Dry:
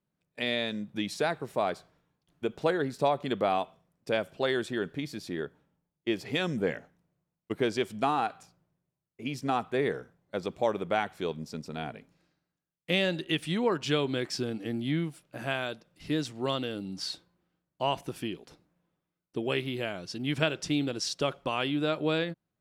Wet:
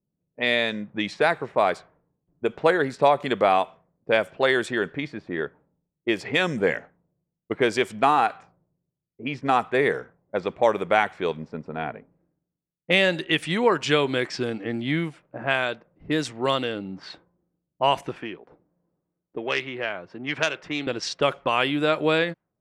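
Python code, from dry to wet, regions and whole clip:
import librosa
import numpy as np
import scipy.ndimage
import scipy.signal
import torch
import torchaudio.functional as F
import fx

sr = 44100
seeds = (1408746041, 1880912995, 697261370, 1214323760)

y = fx.chain(x, sr, fx.self_delay(depth_ms=0.1),
    fx.low_shelf(hz=420.0, db=-10.0),
    fx.band_squash(depth_pct=40), at=(18.16, 20.87))
y = fx.env_lowpass(y, sr, base_hz=330.0, full_db=-26.0)
y = fx.graphic_eq_10(y, sr, hz=(500, 1000, 2000, 8000), db=(4, 5, 8, 6))
y = y * librosa.db_to_amplitude(2.5)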